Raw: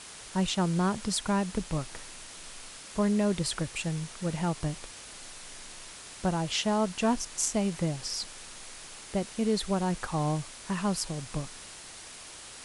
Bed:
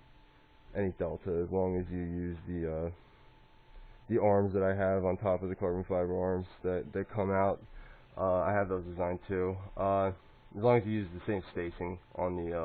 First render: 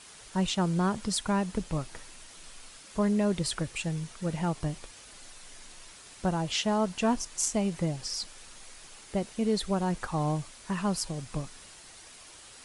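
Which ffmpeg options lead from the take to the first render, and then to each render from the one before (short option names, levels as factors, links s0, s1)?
-af "afftdn=nr=6:nf=-46"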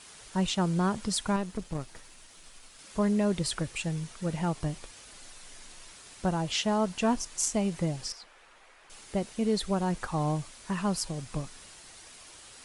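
-filter_complex "[0:a]asettb=1/sr,asplit=3[s0][s1][s2];[s0]atrim=end=1.364[s3];[s1]atrim=start=1.36:end=2.79,asetpts=PTS-STARTPTS,afade=t=in:d=0.004:c=qsin,afade=t=out:st=1.426:d=0.004:c=qsin,aeval=exprs='(tanh(17.8*val(0)+0.7)-tanh(0.7))/17.8':c=same[s4];[s2]atrim=start=2.786[s5];[s3][s4]acrossfade=d=0.004:c1=hsin:c2=qsin[s6];[s6][s5]acrossfade=d=0.004:c1=qsin:c2=hsin,asettb=1/sr,asplit=3[s7][s8][s9];[s7]atrim=end=8.124[s10];[s8]atrim=start=8.12:end=8.9,asetpts=PTS-STARTPTS,afade=t=in:d=0.004:c=qsin,afade=t=out:st=0.776:d=0.004:c=qsin,acrossover=split=390 2700:gain=0.2 1 0.126[s11][s12][s13];[s11][s12][s13]amix=inputs=3:normalize=0[s14];[s9]atrim=start=8.896[s15];[s10][s14]acrossfade=d=0.004:c1=hsin:c2=qsin[s16];[s16][s15]acrossfade=d=0.004:c1=qsin:c2=hsin"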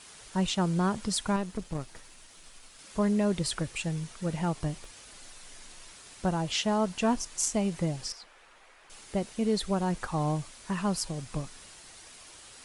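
-filter_complex "[0:a]asettb=1/sr,asplit=3[s0][s1][s2];[s0]atrim=end=4.814[s3];[s1]atrim=start=4.81:end=5.45,asetpts=PTS-STARTPTS,afade=t=in:d=0.004:c=qsin,afade=t=out:st=0.636:d=0.004:c=qsin,asoftclip=type=hard:threshold=0.0119[s4];[s2]atrim=start=5.446[s5];[s3][s4]acrossfade=d=0.004:c1=hsin:c2=qsin[s6];[s6][s5]acrossfade=d=0.004:c1=qsin:c2=hsin"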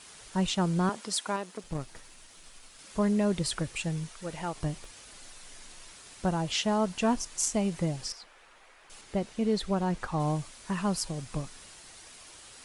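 -filter_complex "[0:a]asettb=1/sr,asplit=3[s0][s1][s2];[s0]atrim=end=0.894[s3];[s1]atrim=start=0.89:end=1.64,asetpts=PTS-STARTPTS,afade=t=in:d=0.004:c=qsin,afade=t=out:st=0.746:d=0.004:c=qsin,highpass=350[s4];[s2]atrim=start=1.636[s5];[s3][s4]acrossfade=d=0.004:c1=hsin:c2=qsin[s6];[s6][s5]acrossfade=d=0.004:c1=qsin:c2=hsin,asettb=1/sr,asplit=3[s7][s8][s9];[s7]atrim=end=4.094[s10];[s8]atrim=start=4.09:end=4.56,asetpts=PTS-STARTPTS,afade=t=in:d=0.004:c=qsin,afade=t=out:st=0.466:d=0.004:c=qsin,equalizer=f=150:t=o:w=2.1:g=-10.5[s11];[s9]atrim=start=4.556[s12];[s10][s11]acrossfade=d=0.004:c1=hsin:c2=qsin[s13];[s13][s12]acrossfade=d=0.004:c1=qsin:c2=hsin,asettb=1/sr,asplit=3[s14][s15][s16];[s14]atrim=end=9.014[s17];[s15]atrim=start=9.01:end=10.2,asetpts=PTS-STARTPTS,afade=t=in:d=0.004:c=qsin,afade=t=out:st=1.186:d=0.004:c=qsin,highshelf=f=8100:g=-11[s18];[s16]atrim=start=10.196[s19];[s17][s18]acrossfade=d=0.004:c1=hsin:c2=qsin[s20];[s20][s19]acrossfade=d=0.004:c1=qsin:c2=hsin"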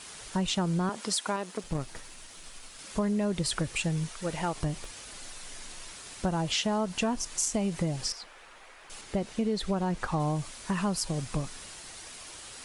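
-filter_complex "[0:a]asplit=2[s0][s1];[s1]alimiter=level_in=1.06:limit=0.0631:level=0:latency=1:release=148,volume=0.944,volume=0.794[s2];[s0][s2]amix=inputs=2:normalize=0,acompressor=threshold=0.0562:ratio=5"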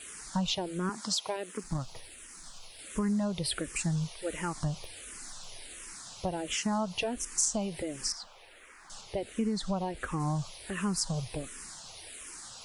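-filter_complex "[0:a]crystalizer=i=0.5:c=0,asplit=2[s0][s1];[s1]afreqshift=-1.4[s2];[s0][s2]amix=inputs=2:normalize=1"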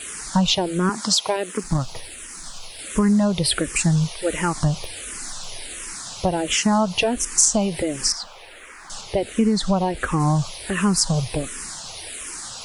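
-af "volume=3.98"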